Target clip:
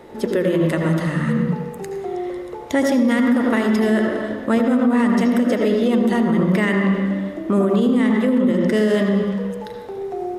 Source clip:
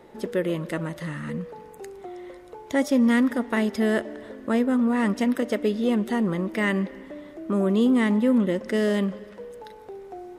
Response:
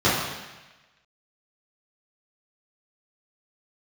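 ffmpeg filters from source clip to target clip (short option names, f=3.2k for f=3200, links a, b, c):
-filter_complex "[0:a]asplit=2[a][b];[1:a]atrim=start_sample=2205,adelay=72[c];[b][c]afir=irnorm=-1:irlink=0,volume=-22dB[d];[a][d]amix=inputs=2:normalize=0,alimiter=limit=-17dB:level=0:latency=1:release=80,volume=7.5dB"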